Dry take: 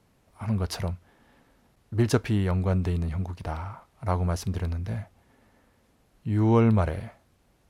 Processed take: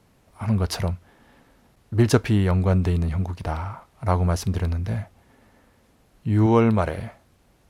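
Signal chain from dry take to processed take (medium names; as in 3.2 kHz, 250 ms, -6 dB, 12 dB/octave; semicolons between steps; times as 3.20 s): 6.46–6.99 s: bass shelf 150 Hz -9 dB; trim +5 dB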